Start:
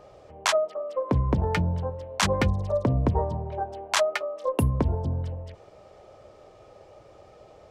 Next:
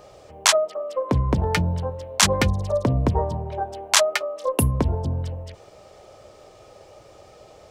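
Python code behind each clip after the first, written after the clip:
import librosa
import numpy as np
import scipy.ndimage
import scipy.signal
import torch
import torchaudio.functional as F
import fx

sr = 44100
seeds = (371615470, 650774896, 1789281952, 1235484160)

y = fx.high_shelf(x, sr, hz=3700.0, db=11.5)
y = y * librosa.db_to_amplitude(2.5)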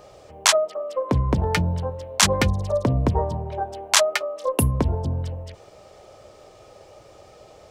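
y = x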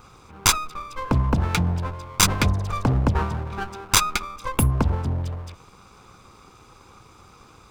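y = fx.lower_of_two(x, sr, delay_ms=0.81)
y = y * librosa.db_to_amplitude(1.0)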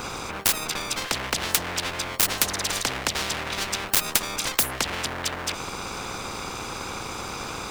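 y = fx.spectral_comp(x, sr, ratio=10.0)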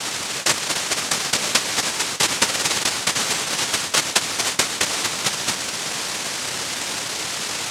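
y = fx.noise_vocoder(x, sr, seeds[0], bands=1)
y = y * librosa.db_to_amplitude(6.5)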